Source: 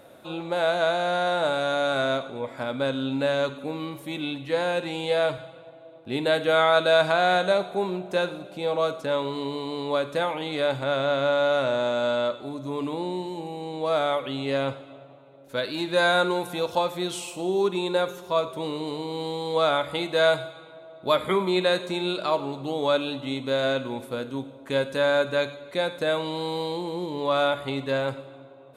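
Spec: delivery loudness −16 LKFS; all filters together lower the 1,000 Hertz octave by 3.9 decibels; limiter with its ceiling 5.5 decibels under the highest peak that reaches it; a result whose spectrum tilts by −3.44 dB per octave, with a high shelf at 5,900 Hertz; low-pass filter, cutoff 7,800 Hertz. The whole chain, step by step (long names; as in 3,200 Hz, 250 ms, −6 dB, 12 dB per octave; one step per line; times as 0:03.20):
low-pass filter 7,800 Hz
parametric band 1,000 Hz −5.5 dB
high-shelf EQ 5,900 Hz −7.5 dB
level +12.5 dB
brickwall limiter −4.5 dBFS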